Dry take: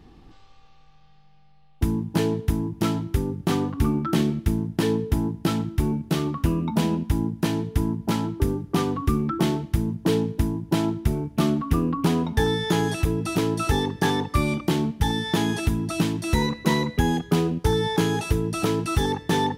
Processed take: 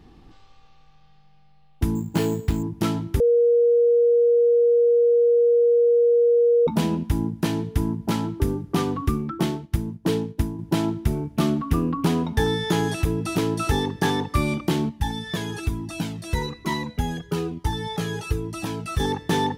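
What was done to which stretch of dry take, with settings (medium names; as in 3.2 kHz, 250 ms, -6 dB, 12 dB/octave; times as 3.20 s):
1.95–2.63 s: careless resampling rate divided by 6×, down none, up hold
3.20–6.67 s: bleep 474 Hz -14 dBFS
9.09–10.59 s: upward expansion, over -42 dBFS
14.89–19.00 s: Shepard-style flanger falling 1.1 Hz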